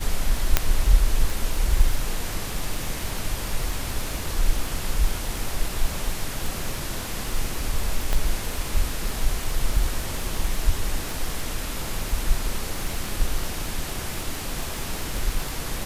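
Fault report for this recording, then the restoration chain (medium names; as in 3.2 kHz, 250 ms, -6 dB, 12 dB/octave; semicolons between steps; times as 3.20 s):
crackle 27 per s -26 dBFS
0.57 s: pop 0 dBFS
8.13 s: pop -10 dBFS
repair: de-click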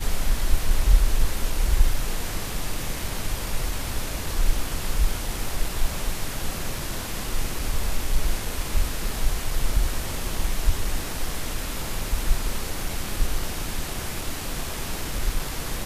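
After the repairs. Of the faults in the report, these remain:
nothing left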